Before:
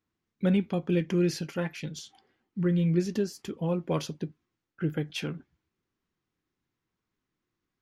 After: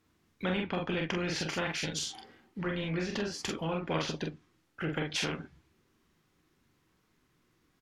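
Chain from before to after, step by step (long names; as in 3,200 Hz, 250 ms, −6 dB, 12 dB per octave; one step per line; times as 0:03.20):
ambience of single reflections 31 ms −11.5 dB, 44 ms −4 dB
treble cut that deepens with the level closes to 2,500 Hz, closed at −23 dBFS
every bin compressed towards the loudest bin 2 to 1
level −4.5 dB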